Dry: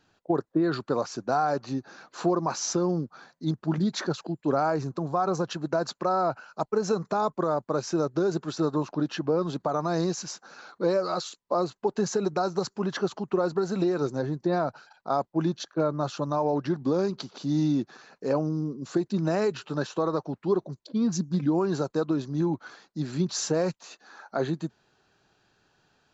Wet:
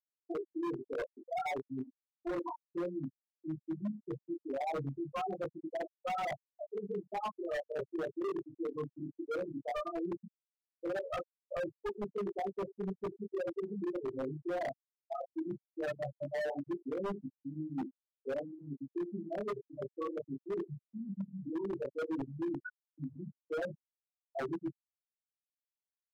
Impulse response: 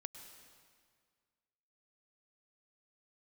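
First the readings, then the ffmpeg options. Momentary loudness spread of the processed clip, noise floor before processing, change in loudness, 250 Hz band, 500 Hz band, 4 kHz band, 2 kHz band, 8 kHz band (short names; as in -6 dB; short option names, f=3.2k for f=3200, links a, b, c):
7 LU, -73 dBFS, -11.5 dB, -12.0 dB, -10.5 dB, -17.5 dB, -7.5 dB, n/a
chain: -filter_complex "[0:a]areverse,acompressor=threshold=-34dB:ratio=6,areverse,adynamicequalizer=threshold=0.00141:dfrequency=4200:dqfactor=2.1:tfrequency=4200:tqfactor=2.1:attack=5:release=100:ratio=0.375:range=2:mode=cutabove:tftype=bell,asplit=2[a][b];[b]adelay=80,lowpass=f=3.1k:p=1,volume=-11dB,asplit=2[c][d];[d]adelay=80,lowpass=f=3.1k:p=1,volume=0.27,asplit=2[e][f];[f]adelay=80,lowpass=f=3.1k:p=1,volume=0.27[g];[c][e][g]amix=inputs=3:normalize=0[h];[a][h]amix=inputs=2:normalize=0,aeval=exprs='(mod(16.8*val(0)+1,2)-1)/16.8':c=same,highshelf=f=6.8k:g=-3.5,asplit=2[i][j];[j]adelay=15,volume=-3dB[k];[i][k]amix=inputs=2:normalize=0,adynamicsmooth=sensitivity=7.5:basefreq=2.2k,afftfilt=real='re*gte(hypot(re,im),0.1)':imag='im*gte(hypot(re,im),0.1)':win_size=1024:overlap=0.75,highpass=f=540:p=1,flanger=delay=19:depth=7.4:speed=0.17,aeval=exprs='0.0112*(abs(mod(val(0)/0.0112+3,4)-2)-1)':c=same,volume=8.5dB"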